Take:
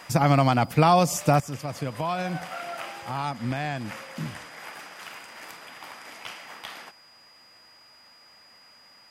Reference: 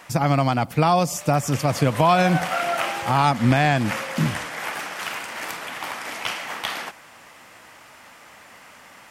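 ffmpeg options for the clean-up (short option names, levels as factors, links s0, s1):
-af "bandreject=f=4900:w=30,asetnsamples=n=441:p=0,asendcmd='1.4 volume volume 11.5dB',volume=1"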